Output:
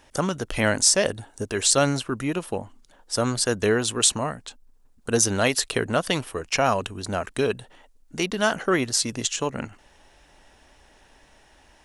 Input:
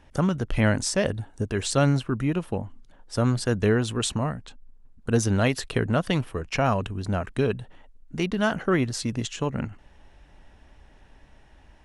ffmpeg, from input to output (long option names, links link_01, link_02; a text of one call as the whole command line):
ffmpeg -i in.wav -af "bass=frequency=250:gain=-10,treble=frequency=4000:gain=9,volume=3dB" out.wav